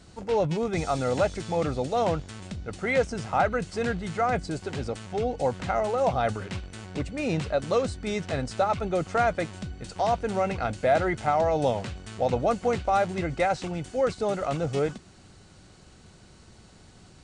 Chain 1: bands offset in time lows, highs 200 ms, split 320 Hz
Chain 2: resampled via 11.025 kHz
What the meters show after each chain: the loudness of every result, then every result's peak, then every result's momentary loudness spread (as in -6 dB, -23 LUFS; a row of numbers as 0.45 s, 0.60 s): -28.0 LUFS, -27.5 LUFS; -10.5 dBFS, -11.5 dBFS; 10 LU, 9 LU